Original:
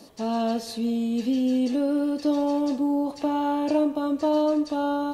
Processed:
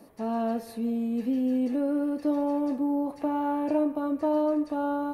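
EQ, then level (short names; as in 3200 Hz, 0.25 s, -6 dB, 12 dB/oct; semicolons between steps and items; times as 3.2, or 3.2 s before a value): band shelf 4800 Hz -12.5 dB; -3.0 dB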